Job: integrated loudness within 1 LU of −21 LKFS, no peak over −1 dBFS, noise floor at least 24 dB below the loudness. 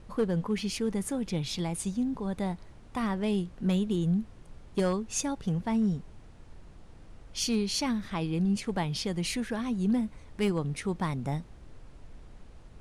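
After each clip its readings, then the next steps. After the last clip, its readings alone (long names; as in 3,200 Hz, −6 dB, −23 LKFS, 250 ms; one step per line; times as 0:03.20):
share of clipped samples 0.3%; peaks flattened at −20.5 dBFS; background noise floor −51 dBFS; target noise floor −55 dBFS; integrated loudness −31.0 LKFS; sample peak −20.5 dBFS; target loudness −21.0 LKFS
→ clipped peaks rebuilt −20.5 dBFS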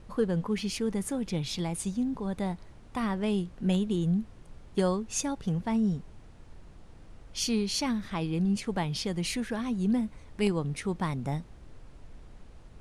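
share of clipped samples 0.0%; background noise floor −51 dBFS; target noise floor −55 dBFS
→ noise reduction from a noise print 6 dB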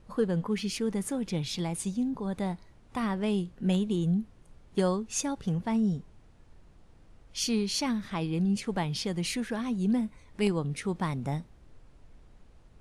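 background noise floor −57 dBFS; integrated loudness −30.5 LKFS; sample peak −12.5 dBFS; target loudness −21.0 LKFS
→ level +9.5 dB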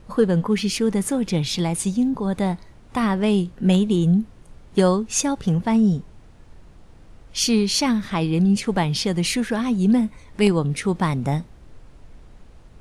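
integrated loudness −21.0 LKFS; sample peak −3.0 dBFS; background noise floor −47 dBFS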